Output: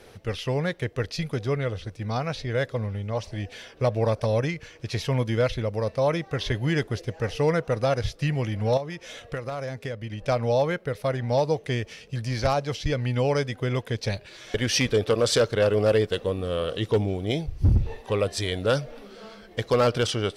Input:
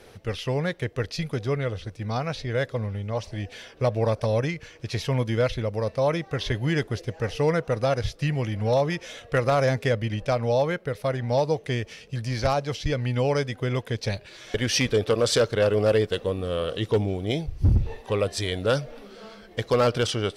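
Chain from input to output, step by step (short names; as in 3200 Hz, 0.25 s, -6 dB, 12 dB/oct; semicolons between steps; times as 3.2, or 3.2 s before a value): 8.77–10.24 compressor 4:1, threshold -31 dBFS, peak gain reduction 11.5 dB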